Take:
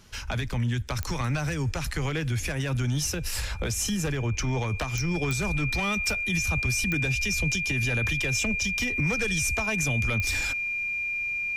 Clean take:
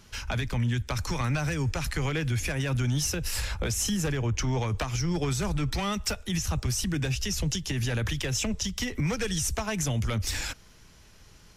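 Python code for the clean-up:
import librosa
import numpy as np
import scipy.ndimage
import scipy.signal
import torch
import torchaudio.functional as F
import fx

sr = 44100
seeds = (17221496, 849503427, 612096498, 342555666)

y = fx.fix_declick_ar(x, sr, threshold=10.0)
y = fx.notch(y, sr, hz=2400.0, q=30.0)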